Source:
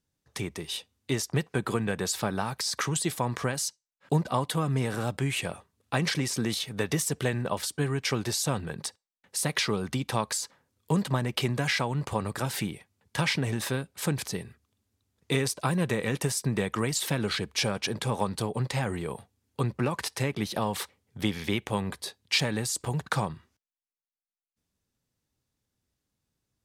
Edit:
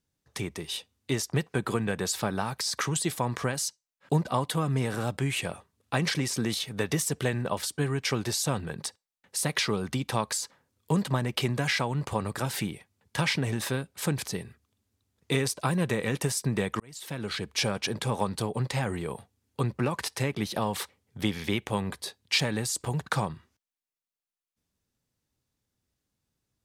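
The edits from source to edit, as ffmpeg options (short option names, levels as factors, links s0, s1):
-filter_complex "[0:a]asplit=2[s0][s1];[s0]atrim=end=16.8,asetpts=PTS-STARTPTS,afade=t=out:st=16.796:d=0.004:c=hsin[s2];[s1]atrim=start=16.8,asetpts=PTS-STARTPTS,afade=t=in:d=0.79[s3];[s2][s3]concat=n=2:v=0:a=1"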